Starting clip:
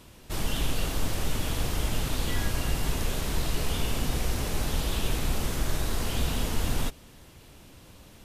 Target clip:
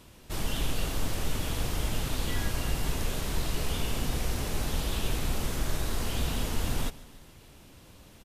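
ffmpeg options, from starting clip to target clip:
ffmpeg -i in.wav -af "aecho=1:1:144|288|432|576:0.1|0.056|0.0314|0.0176,volume=-2dB" out.wav

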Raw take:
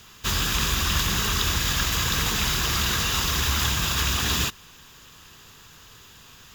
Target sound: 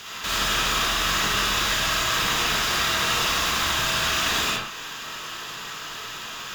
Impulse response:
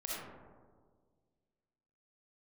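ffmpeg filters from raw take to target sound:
-filter_complex "[0:a]asplit=2[link_01][link_02];[link_02]highpass=frequency=720:poles=1,volume=22dB,asoftclip=type=tanh:threshold=-10dB[link_03];[link_01][link_03]amix=inputs=2:normalize=0,lowpass=frequency=4400:poles=1,volume=-6dB,alimiter=limit=-18dB:level=0:latency=1:release=323[link_04];[1:a]atrim=start_sample=2205,afade=type=out:start_time=0.25:duration=0.01,atrim=end_sample=11466[link_05];[link_04][link_05]afir=irnorm=-1:irlink=0,volume=1dB"

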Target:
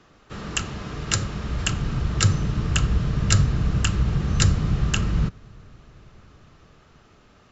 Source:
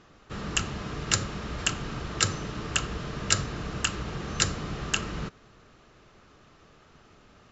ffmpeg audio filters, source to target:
ffmpeg -i in.wav -filter_complex "[0:a]acrossover=split=170|1000|1400[link_01][link_02][link_03][link_04];[link_01]dynaudnorm=framelen=470:gausssize=7:maxgain=15dB[link_05];[link_05][link_02][link_03][link_04]amix=inputs=4:normalize=0,volume=1dB" out.wav

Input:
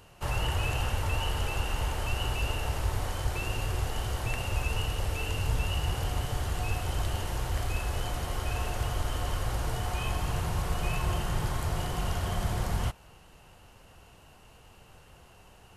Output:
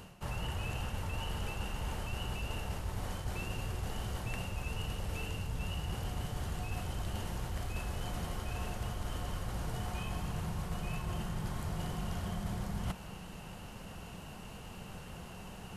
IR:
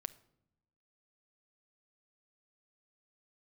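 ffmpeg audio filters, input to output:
-af "equalizer=frequency=190:width=2.2:gain=11,areverse,acompressor=threshold=-42dB:ratio=5,areverse,volume=6dB"

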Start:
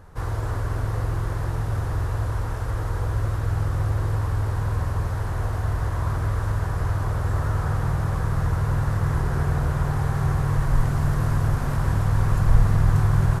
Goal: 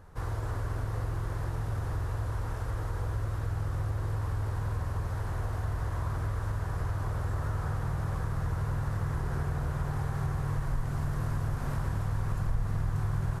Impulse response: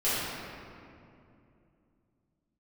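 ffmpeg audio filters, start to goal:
-af "acompressor=threshold=-23dB:ratio=2.5,volume=-5.5dB"

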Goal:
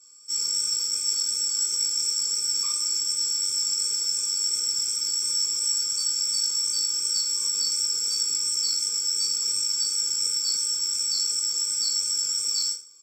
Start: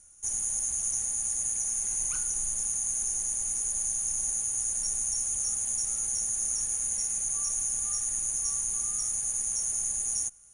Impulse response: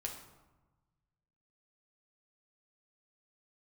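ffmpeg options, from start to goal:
-filter_complex "[0:a]highpass=frequency=390:width=0.5412,highpass=frequency=390:width=1.3066,aecho=1:1:2.1:0.78,acrossover=split=2500[link_01][link_02];[link_02]acontrast=44[link_03];[link_01][link_03]amix=inputs=2:normalize=0,afreqshift=19,asetrate=35677,aresample=44100,asplit=2[link_04][link_05];[link_05]adelay=180.8,volume=-27dB,highshelf=frequency=4000:gain=-4.07[link_06];[link_04][link_06]amix=inputs=2:normalize=0,flanger=delay=16:depth=8:speed=2.8,acrusher=bits=4:mode=log:mix=0:aa=0.000001,asplit=2[link_07][link_08];[link_08]aecho=0:1:20|43|69.45|99.87|134.8:0.631|0.398|0.251|0.158|0.1[link_09];[link_07][link_09]amix=inputs=2:normalize=0,aresample=32000,aresample=44100,afftfilt=real='re*eq(mod(floor(b*sr/1024/520),2),0)':imag='im*eq(mod(floor(b*sr/1024/520),2),0)':win_size=1024:overlap=0.75"

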